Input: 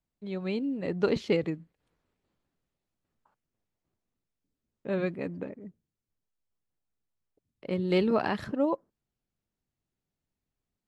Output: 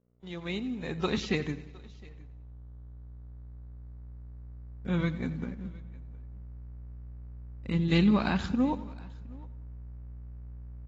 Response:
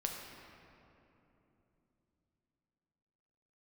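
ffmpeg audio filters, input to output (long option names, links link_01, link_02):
-filter_complex "[0:a]agate=range=-33dB:threshold=-46dB:ratio=3:detection=peak,equalizer=frequency=125:width_type=o:width=1:gain=-7,equalizer=frequency=250:width_type=o:width=1:gain=6,equalizer=frequency=1000:width_type=o:width=1:gain=5,asplit=2[link_01][link_02];[link_02]aecho=0:1:90|180|270|360|450:0.158|0.0856|0.0462|0.025|0.0135[link_03];[link_01][link_03]amix=inputs=2:normalize=0,crystalizer=i=6:c=0,asetrate=40440,aresample=44100,atempo=1.09051,aeval=exprs='val(0)+0.00251*(sin(2*PI*60*n/s)+sin(2*PI*2*60*n/s)/2+sin(2*PI*3*60*n/s)/3+sin(2*PI*4*60*n/s)/4+sin(2*PI*5*60*n/s)/5)':channel_layout=same,asubboost=boost=11:cutoff=140,aecho=1:1:713:0.0668,aeval=exprs='sgn(val(0))*max(abs(val(0))-0.00266,0)':channel_layout=same,volume=-6.5dB" -ar 32000 -c:a aac -b:a 24k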